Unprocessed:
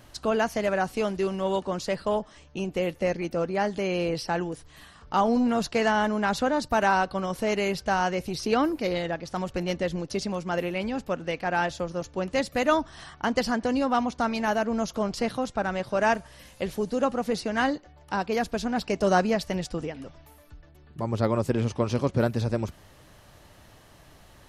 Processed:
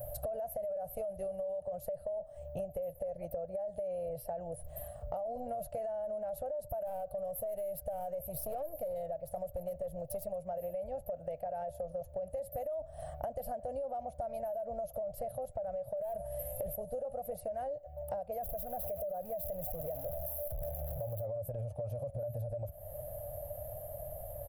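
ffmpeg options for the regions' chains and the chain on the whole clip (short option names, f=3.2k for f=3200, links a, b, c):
-filter_complex "[0:a]asettb=1/sr,asplit=3[a][b][c];[a]atrim=end=6.854[d];[b]atrim=start=6.85:end=10.36,asetpts=PTS-STARTPTS,afade=t=in:d=0.004:c=qsin,afade=t=out:st=3.506:d=0.004:c=qsin,highshelf=f=4.9k:g=5.5,aeval=exprs='(tanh(15.8*val(0)+0.35)-tanh(0.35))/15.8':c=same[e];[c]atrim=start=10.356[f];[d][e]acrossfade=d=0.004:c1=hsin:c2=qsin[g];[g][f]acrossfade=d=0.004:c1=qsin:c2=hsin,asettb=1/sr,asplit=3[h][i][j];[h]atrim=end=15.974[k];[i]atrim=start=15.97:end=16.76,asetpts=PTS-STARTPTS,afade=t=in:d=0.004:c=qsin,afade=t=out:st=0.786:d=0.004:c=qsin,acontrast=89,asoftclip=type=hard:threshold=-17dB[l];[j]atrim=start=16.756[m];[k][l]acrossfade=d=0.004:c1=hsin:c2=qsin[n];[n][m]acrossfade=d=0.004:c1=qsin:c2=hsin,asettb=1/sr,asplit=3[o][p][q];[o]atrim=end=18.434[r];[p]atrim=start=18.43:end=21.25,asetpts=PTS-STARTPTS,afade=t=in:d=0.004:c=qsin,afade=t=out:st=2.816:d=0.004:c=qsin,aeval=exprs='val(0)+0.5*0.0398*sgn(val(0))':c=same,acompressor=threshold=-28dB:ratio=4:attack=3.2:release=140:knee=1:detection=peak[s];[q]atrim=start=21.246[t];[r][s]acrossfade=d=0.004:c1=hsin:c2=qsin[u];[u][t]acrossfade=d=0.004:c1=qsin:c2=hsin,firequalizer=gain_entry='entry(120,0);entry(220,-20);entry(380,-24);entry(590,14);entry(980,-22);entry(3800,-28);entry(5800,-28);entry(12000,12)':delay=0.05:min_phase=1,alimiter=level_in=1dB:limit=-24dB:level=0:latency=1:release=27,volume=-1dB,acompressor=threshold=-44dB:ratio=10,volume=8dB"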